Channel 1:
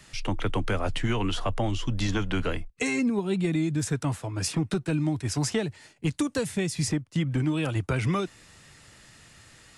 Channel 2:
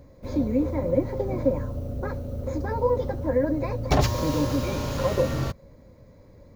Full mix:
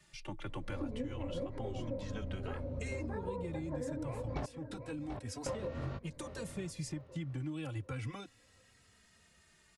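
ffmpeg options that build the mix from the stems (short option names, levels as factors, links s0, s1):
-filter_complex "[0:a]asplit=2[s0][s1];[s1]adelay=2.9,afreqshift=-0.3[s2];[s0][s2]amix=inputs=2:normalize=1,volume=0.299,asplit=2[s3][s4];[1:a]lowpass=2900,flanger=delay=20:depth=5.5:speed=1.8,adelay=450,volume=0.841,asplit=3[s5][s6][s7];[s5]atrim=end=4.46,asetpts=PTS-STARTPTS,afade=t=out:st=4.456:d=0.004:c=hsin[s8];[s6]atrim=start=4.46:end=5.46,asetpts=PTS-STARTPTS,volume=0[s9];[s7]atrim=start=5.46,asetpts=PTS-STARTPTS,afade=t=in:d=0.004:c=hsin[s10];[s8][s9][s10]concat=n=3:v=0:a=1,asplit=2[s11][s12];[s12]volume=0.112[s13];[s4]apad=whole_len=309092[s14];[s11][s14]sidechaincompress=threshold=0.0141:ratio=8:attack=8.1:release=783[s15];[s13]aecho=0:1:733|1466|2199|2932|3665:1|0.34|0.116|0.0393|0.0134[s16];[s3][s15][s16]amix=inputs=3:normalize=0,acompressor=threshold=0.0178:ratio=12"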